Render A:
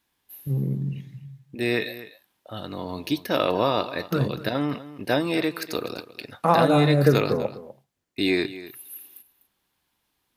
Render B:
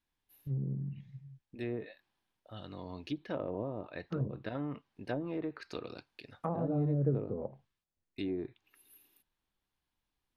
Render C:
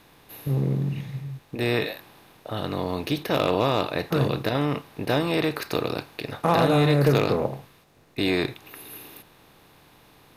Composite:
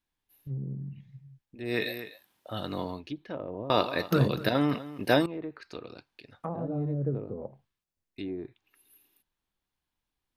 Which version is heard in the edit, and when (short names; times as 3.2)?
B
1.75–2.92 from A, crossfade 0.24 s
3.7–5.26 from A
not used: C